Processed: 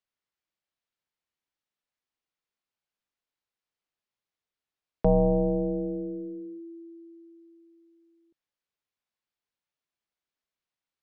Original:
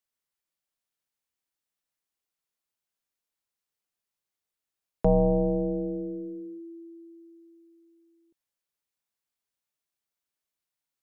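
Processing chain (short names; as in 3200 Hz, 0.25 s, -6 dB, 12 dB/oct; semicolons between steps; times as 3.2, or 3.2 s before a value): LPF 4500 Hz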